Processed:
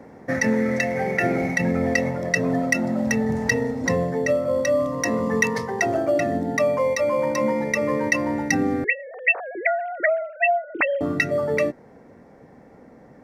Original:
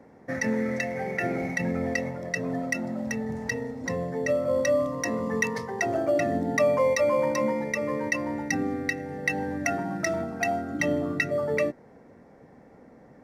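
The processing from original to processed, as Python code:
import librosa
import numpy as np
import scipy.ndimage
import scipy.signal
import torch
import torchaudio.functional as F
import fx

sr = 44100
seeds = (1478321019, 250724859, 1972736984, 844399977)

y = fx.sine_speech(x, sr, at=(8.84, 11.01))
y = fx.rider(y, sr, range_db=4, speed_s=0.5)
y = y * librosa.db_to_amplitude(5.0)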